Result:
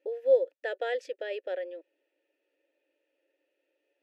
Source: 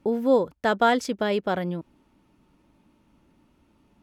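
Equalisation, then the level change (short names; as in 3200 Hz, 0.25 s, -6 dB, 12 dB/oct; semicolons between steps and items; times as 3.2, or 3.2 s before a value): vowel filter e; brick-wall FIR high-pass 280 Hz; high shelf 3400 Hz +9.5 dB; 0.0 dB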